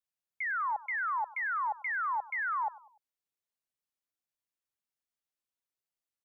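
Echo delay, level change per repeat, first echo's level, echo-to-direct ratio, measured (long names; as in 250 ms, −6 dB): 98 ms, −7.5 dB, −19.5 dB, −18.5 dB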